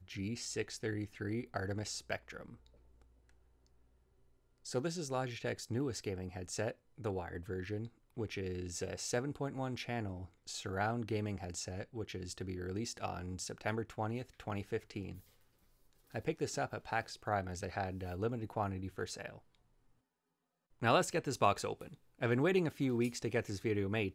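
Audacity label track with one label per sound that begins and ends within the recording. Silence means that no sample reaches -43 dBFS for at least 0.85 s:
4.660000	15.150000	sound
16.140000	19.360000	sound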